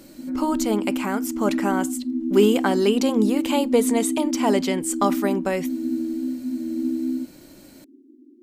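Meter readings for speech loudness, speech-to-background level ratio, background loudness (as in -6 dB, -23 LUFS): -23.5 LUFS, 2.5 dB, -26.0 LUFS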